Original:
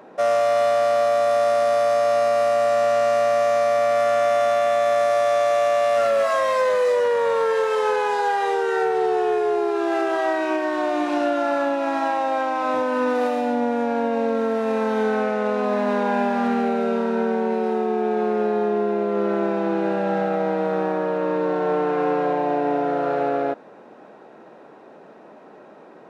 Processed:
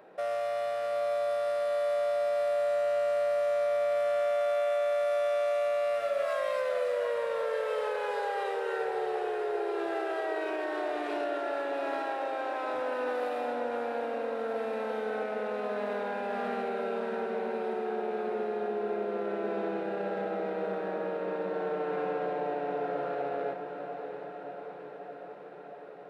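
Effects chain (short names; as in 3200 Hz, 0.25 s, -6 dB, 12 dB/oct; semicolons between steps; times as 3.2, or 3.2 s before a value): fifteen-band EQ 100 Hz -6 dB, 250 Hz -12 dB, 1000 Hz -6 dB, 6300 Hz -9 dB; limiter -20 dBFS, peak gain reduction 6 dB; diffused feedback echo 0.713 s, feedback 68%, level -8 dB; gain -6 dB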